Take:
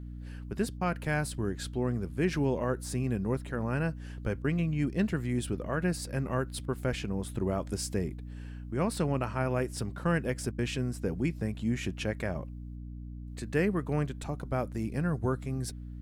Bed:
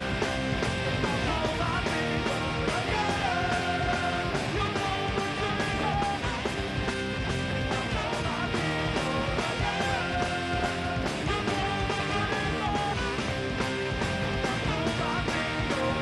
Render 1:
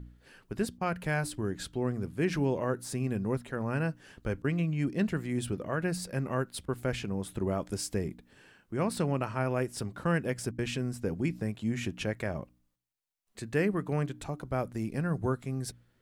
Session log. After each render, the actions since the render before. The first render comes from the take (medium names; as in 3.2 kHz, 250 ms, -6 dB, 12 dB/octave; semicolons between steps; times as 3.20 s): de-hum 60 Hz, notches 5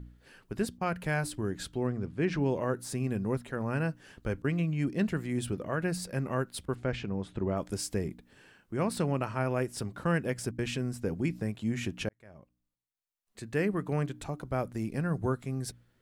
1.87–2.46 s: distance through air 90 m; 6.75–7.57 s: distance through air 120 m; 12.09–13.86 s: fade in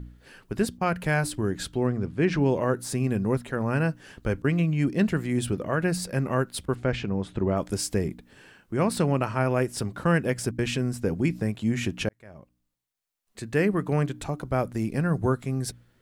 trim +6 dB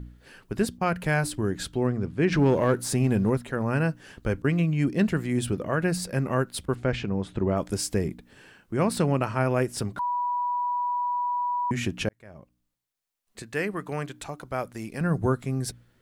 2.32–3.30 s: waveshaping leveller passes 1; 9.99–11.71 s: bleep 977 Hz -24 dBFS; 13.42–15.01 s: bass shelf 480 Hz -10.5 dB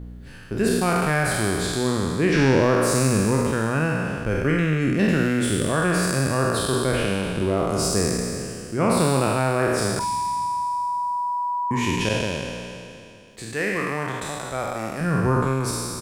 spectral sustain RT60 2.59 s; doubling 45 ms -11.5 dB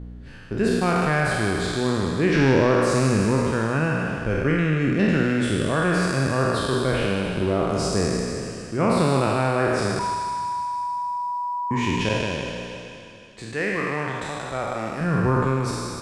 distance through air 70 m; thinning echo 154 ms, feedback 66%, level -9.5 dB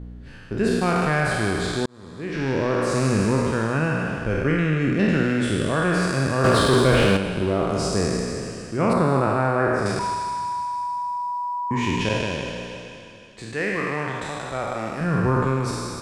1.86–3.20 s: fade in; 6.44–7.17 s: waveshaping leveller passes 2; 8.93–9.86 s: resonant high shelf 2.2 kHz -9 dB, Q 1.5